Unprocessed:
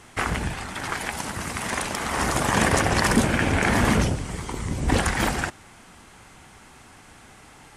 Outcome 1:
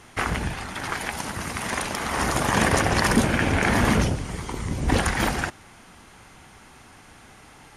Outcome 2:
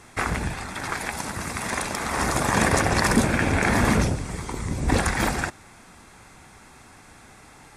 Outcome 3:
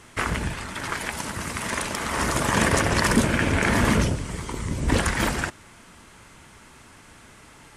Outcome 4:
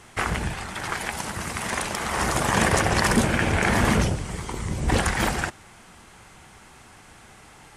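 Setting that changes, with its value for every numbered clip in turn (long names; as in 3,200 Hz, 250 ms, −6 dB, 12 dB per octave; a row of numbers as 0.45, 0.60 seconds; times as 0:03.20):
notch filter, centre frequency: 7,800, 3,000, 770, 270 Hertz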